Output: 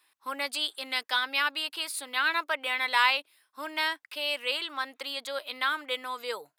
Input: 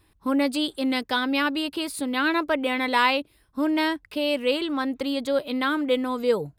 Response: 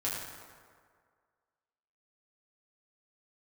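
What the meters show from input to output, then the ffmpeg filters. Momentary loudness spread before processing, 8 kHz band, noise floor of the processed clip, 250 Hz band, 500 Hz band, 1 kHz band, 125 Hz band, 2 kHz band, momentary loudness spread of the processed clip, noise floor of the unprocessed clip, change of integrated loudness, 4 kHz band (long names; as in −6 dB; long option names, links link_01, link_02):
5 LU, 0.0 dB, −77 dBFS, −23.5 dB, −13.0 dB, −4.0 dB, can't be measured, −0.5 dB, 10 LU, −63 dBFS, −4.5 dB, 0.0 dB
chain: -af "highpass=1100"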